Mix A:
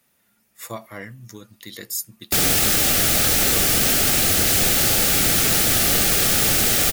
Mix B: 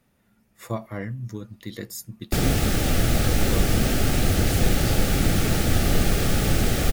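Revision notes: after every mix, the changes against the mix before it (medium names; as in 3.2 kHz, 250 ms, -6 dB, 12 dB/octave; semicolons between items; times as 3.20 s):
background -3.5 dB; master: add tilt EQ -3 dB/octave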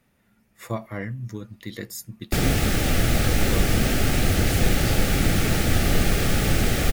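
master: add peaking EQ 2.1 kHz +3.5 dB 0.96 oct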